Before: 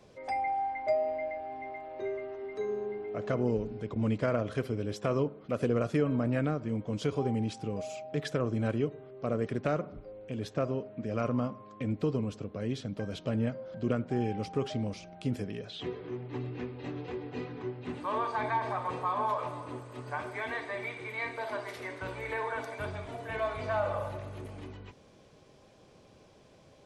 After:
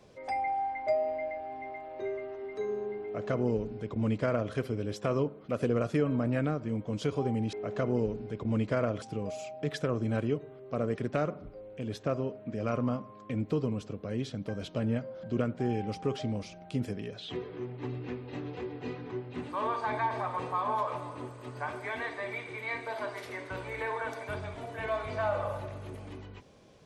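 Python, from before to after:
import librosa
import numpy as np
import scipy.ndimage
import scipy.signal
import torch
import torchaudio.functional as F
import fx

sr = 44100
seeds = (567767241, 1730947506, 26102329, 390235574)

y = fx.edit(x, sr, fx.duplicate(start_s=3.04, length_s=1.49, to_s=7.53), tone=tone)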